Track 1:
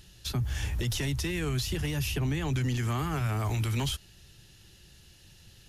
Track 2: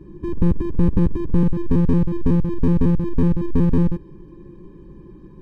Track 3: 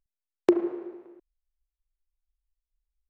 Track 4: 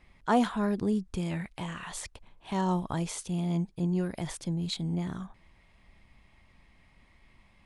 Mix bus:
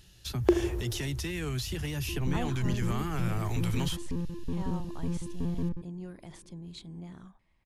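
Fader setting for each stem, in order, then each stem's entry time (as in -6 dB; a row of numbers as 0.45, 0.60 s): -3.0, -16.5, -2.5, -12.0 dB; 0.00, 1.85, 0.00, 2.05 s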